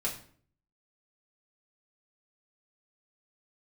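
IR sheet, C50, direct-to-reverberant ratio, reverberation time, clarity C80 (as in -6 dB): 9.5 dB, -4.5 dB, 0.50 s, 13.0 dB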